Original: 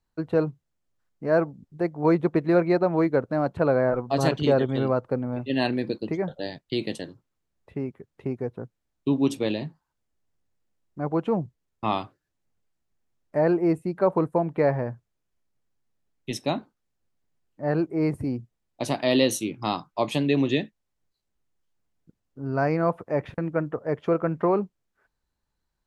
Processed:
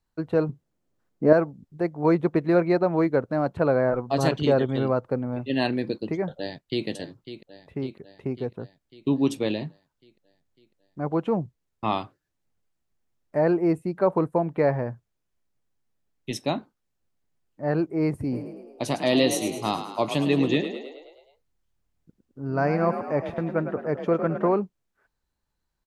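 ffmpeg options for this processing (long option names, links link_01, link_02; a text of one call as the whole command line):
ffmpeg -i in.wav -filter_complex "[0:a]asettb=1/sr,asplit=3[link_01][link_02][link_03];[link_01]atrim=end=0.494[link_04];[link_02]atrim=start=0.49:end=1.33,asetpts=PTS-STARTPTS,afade=type=in:duration=0.004:curve=qsin,afade=type=out:start_time=0.836:duration=0.004:curve=qsin,equalizer=frequency=310:width_type=o:width=2.8:gain=11[link_05];[link_03]atrim=start=1.326[link_06];[link_04][link_05]acrossfade=duration=0.004:curve1=hsin:curve2=qsin[link_07];[link_07][link_06]acrossfade=duration=0.004:curve1=qsin:curve2=hsin,asplit=2[link_08][link_09];[link_09]afade=type=in:start_time=6.37:duration=0.01,afade=type=out:start_time=6.87:duration=0.01,aecho=0:1:550|1100|1650|2200|2750|3300|3850|4400:0.251189|0.163273|0.106127|0.0689827|0.0448387|0.0291452|0.0189444|0.0123138[link_10];[link_08][link_10]amix=inputs=2:normalize=0,asplit=3[link_11][link_12][link_13];[link_11]afade=type=out:start_time=18.31:duration=0.02[link_14];[link_12]asplit=8[link_15][link_16][link_17][link_18][link_19][link_20][link_21][link_22];[link_16]adelay=106,afreqshift=38,volume=-9.5dB[link_23];[link_17]adelay=212,afreqshift=76,volume=-14.4dB[link_24];[link_18]adelay=318,afreqshift=114,volume=-19.3dB[link_25];[link_19]adelay=424,afreqshift=152,volume=-24.1dB[link_26];[link_20]adelay=530,afreqshift=190,volume=-29dB[link_27];[link_21]adelay=636,afreqshift=228,volume=-33.9dB[link_28];[link_22]adelay=742,afreqshift=266,volume=-38.8dB[link_29];[link_15][link_23][link_24][link_25][link_26][link_27][link_28][link_29]amix=inputs=8:normalize=0,afade=type=in:start_time=18.31:duration=0.02,afade=type=out:start_time=24.53:duration=0.02[link_30];[link_13]afade=type=in:start_time=24.53:duration=0.02[link_31];[link_14][link_30][link_31]amix=inputs=3:normalize=0" out.wav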